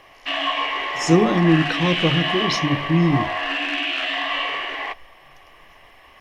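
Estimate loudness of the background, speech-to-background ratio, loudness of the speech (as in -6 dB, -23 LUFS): -23.5 LUFS, 3.5 dB, -20.0 LUFS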